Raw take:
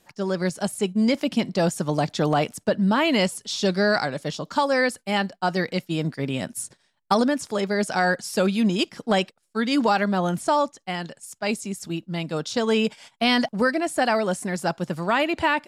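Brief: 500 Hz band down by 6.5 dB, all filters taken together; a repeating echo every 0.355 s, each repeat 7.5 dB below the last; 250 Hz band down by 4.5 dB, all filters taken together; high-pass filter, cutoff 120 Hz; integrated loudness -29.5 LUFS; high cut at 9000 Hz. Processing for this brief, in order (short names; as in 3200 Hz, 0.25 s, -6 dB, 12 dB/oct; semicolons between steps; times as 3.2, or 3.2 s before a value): HPF 120 Hz; LPF 9000 Hz; bell 250 Hz -3.5 dB; bell 500 Hz -7.5 dB; feedback echo 0.355 s, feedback 42%, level -7.5 dB; gain -3 dB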